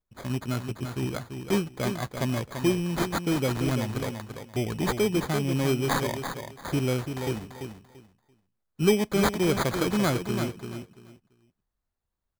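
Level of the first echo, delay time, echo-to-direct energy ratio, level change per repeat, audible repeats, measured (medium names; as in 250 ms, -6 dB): -7.5 dB, 339 ms, -7.5 dB, -13.5 dB, 3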